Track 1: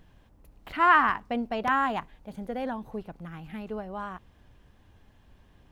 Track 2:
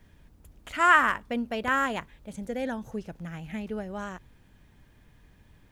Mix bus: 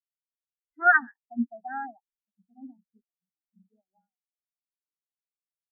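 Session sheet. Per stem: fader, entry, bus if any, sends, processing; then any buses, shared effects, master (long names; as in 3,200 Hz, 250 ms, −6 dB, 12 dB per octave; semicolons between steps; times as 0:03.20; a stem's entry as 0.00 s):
+3.0 dB, 0.00 s, no send, phaser with its sweep stopped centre 730 Hz, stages 8
+2.5 dB, 0.7 ms, no send, vocoder with an arpeggio as carrier major triad, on F#3, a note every 131 ms; automatic ducking −13 dB, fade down 1.45 s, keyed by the first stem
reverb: not used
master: every bin expanded away from the loudest bin 4 to 1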